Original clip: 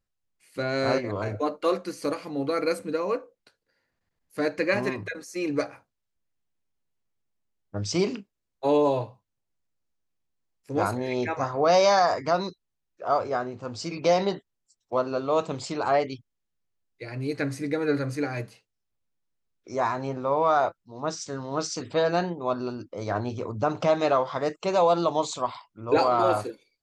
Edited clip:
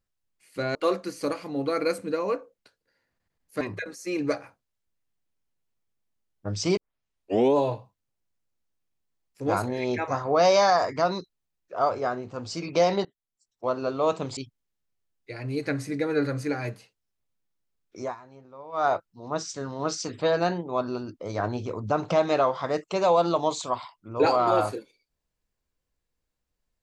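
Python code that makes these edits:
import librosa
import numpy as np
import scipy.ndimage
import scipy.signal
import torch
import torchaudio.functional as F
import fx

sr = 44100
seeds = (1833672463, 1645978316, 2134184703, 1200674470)

y = fx.edit(x, sr, fx.cut(start_s=0.75, length_s=0.81),
    fx.cut(start_s=4.42, length_s=0.48),
    fx.tape_start(start_s=8.06, length_s=0.78),
    fx.fade_in_from(start_s=14.34, length_s=0.81, floor_db=-23.0),
    fx.cut(start_s=15.66, length_s=0.43),
    fx.fade_down_up(start_s=19.72, length_s=0.87, db=-19.0, fade_s=0.15), tone=tone)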